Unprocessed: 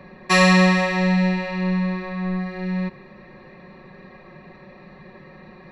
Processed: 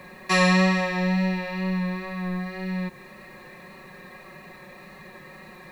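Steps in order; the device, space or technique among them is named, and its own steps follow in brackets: noise-reduction cassette on a plain deck (mismatched tape noise reduction encoder only; wow and flutter 22 cents; white noise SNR 36 dB); gain -4.5 dB

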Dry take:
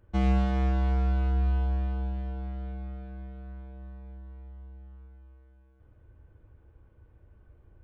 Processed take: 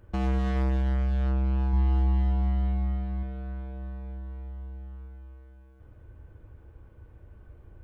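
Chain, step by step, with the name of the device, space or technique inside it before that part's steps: limiter into clipper (limiter -24.5 dBFS, peak gain reduction 7.5 dB; hard clip -30 dBFS, distortion -14 dB); 1.73–3.23 comb 1 ms, depth 58%; gain +6.5 dB

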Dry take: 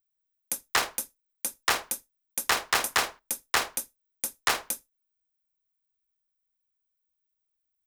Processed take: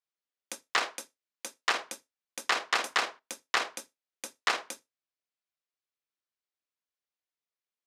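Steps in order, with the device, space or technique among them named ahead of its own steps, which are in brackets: notch 870 Hz, Q 17; 0.82–1.71 HPF 200 Hz 6 dB/oct; public-address speaker with an overloaded transformer (core saturation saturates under 1700 Hz; BPF 270–5400 Hz)

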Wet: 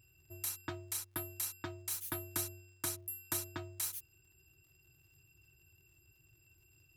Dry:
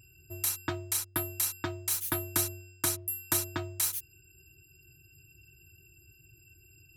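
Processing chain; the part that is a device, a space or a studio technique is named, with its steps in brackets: vinyl LP (crackle 77/s -54 dBFS; pink noise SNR 41 dB); gain -8.5 dB

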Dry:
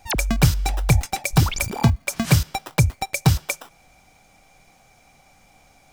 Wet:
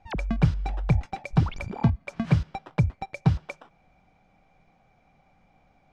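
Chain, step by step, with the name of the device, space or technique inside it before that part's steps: phone in a pocket (LPF 3500 Hz 12 dB/oct; bell 180 Hz +5 dB 0.47 oct; high shelf 2100 Hz -9 dB); gain -6 dB

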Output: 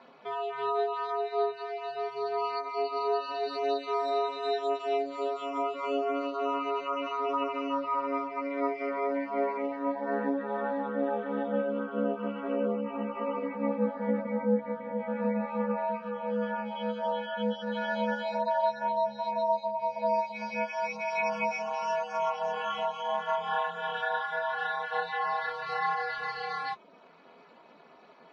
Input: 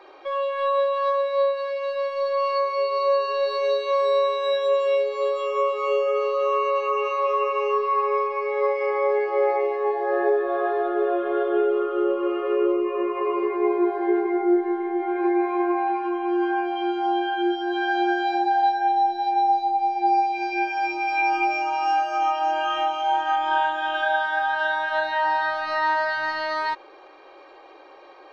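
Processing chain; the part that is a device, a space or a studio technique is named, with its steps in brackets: reverb removal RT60 0.52 s; alien voice (ring modulator 140 Hz; flange 0.27 Hz, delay 7.2 ms, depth 6.2 ms, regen -47%); 3.32–4.09 HPF 220 Hz -> 100 Hz

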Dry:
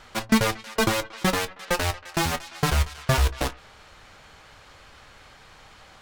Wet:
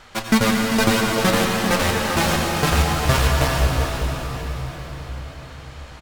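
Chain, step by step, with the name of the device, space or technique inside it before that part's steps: cave (echo 0.395 s -10.5 dB; reverb RT60 5.3 s, pre-delay 76 ms, DRR -1 dB); gain +2.5 dB

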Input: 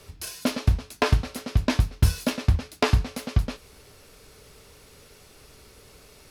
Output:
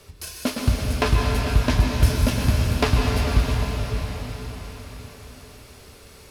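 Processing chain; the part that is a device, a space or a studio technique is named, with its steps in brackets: cathedral (reverb RT60 5.4 s, pre-delay 0.117 s, DRR -1.5 dB)

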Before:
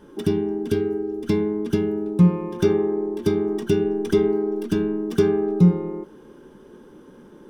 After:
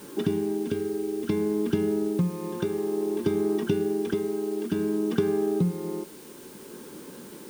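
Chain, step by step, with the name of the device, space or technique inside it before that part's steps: medium wave at night (BPF 100–3800 Hz; compressor, threshold -24 dBFS, peak gain reduction 13 dB; tremolo 0.57 Hz, depth 39%; whine 9000 Hz -60 dBFS; white noise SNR 23 dB); gain +3 dB

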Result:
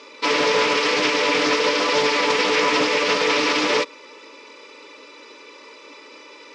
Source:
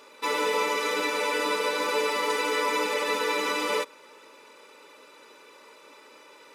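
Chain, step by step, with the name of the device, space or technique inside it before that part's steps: full-range speaker at full volume (Doppler distortion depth 0.48 ms; speaker cabinet 220–6400 Hz, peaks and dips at 290 Hz +5 dB, 740 Hz -9 dB, 1500 Hz -6 dB, 2300 Hz +3 dB, 5200 Hz +5 dB); gain +8.5 dB

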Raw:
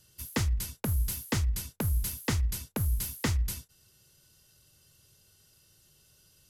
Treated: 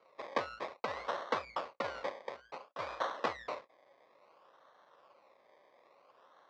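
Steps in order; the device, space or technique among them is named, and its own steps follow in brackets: 2.1–2.79 passive tone stack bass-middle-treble 5-5-5; circuit-bent sampling toy (decimation with a swept rate 25×, swing 60% 0.58 Hz; speaker cabinet 550–4700 Hz, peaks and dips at 550 Hz +10 dB, 1100 Hz +8 dB, 2000 Hz +3 dB, 3000 Hz -4 dB); gain -1 dB

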